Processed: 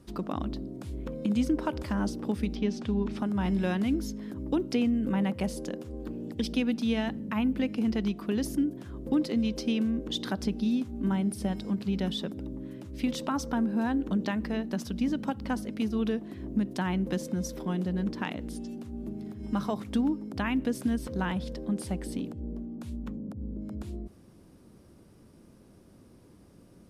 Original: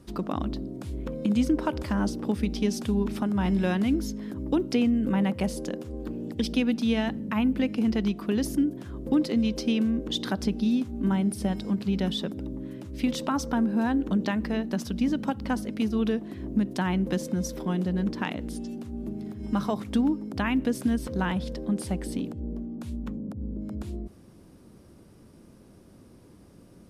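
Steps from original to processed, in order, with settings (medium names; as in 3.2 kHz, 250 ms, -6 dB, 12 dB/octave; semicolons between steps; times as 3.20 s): 2.54–3.18 s: low-pass 3.2 kHz -> 6.1 kHz 12 dB/octave; trim -3 dB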